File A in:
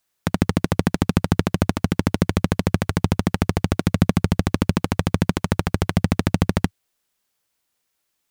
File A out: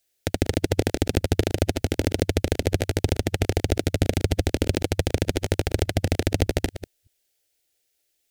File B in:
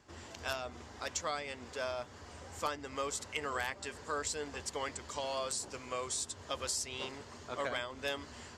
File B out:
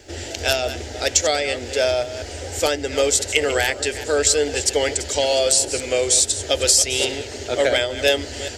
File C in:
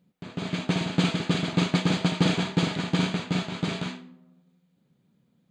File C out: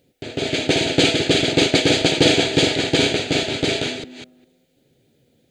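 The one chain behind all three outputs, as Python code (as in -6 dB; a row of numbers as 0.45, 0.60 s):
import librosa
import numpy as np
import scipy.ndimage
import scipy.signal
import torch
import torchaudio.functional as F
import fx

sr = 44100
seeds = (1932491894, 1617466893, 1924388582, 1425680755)

y = fx.reverse_delay(x, sr, ms=202, wet_db=-12.5)
y = fx.fixed_phaser(y, sr, hz=450.0, stages=4)
y = librosa.util.normalize(y) * 10.0 ** (-1.5 / 20.0)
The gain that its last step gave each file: +2.5, +21.0, +14.5 dB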